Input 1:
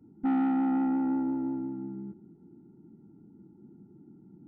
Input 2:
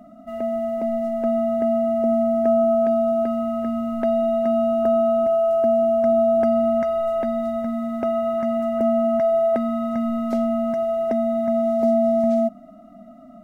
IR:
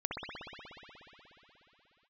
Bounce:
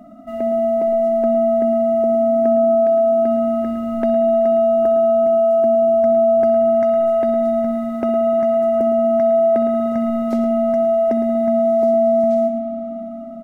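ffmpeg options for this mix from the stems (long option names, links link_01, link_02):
-filter_complex "[0:a]adelay=1950,volume=-15.5dB[link_01];[1:a]volume=0.5dB,asplit=3[link_02][link_03][link_04];[link_03]volume=-10dB[link_05];[link_04]volume=-8.5dB[link_06];[2:a]atrim=start_sample=2205[link_07];[link_05][link_07]afir=irnorm=-1:irlink=0[link_08];[link_06]aecho=0:1:110:1[link_09];[link_01][link_02][link_08][link_09]amix=inputs=4:normalize=0,equalizer=frequency=330:width_type=o:width=0.77:gain=3.5,acompressor=threshold=-15dB:ratio=2"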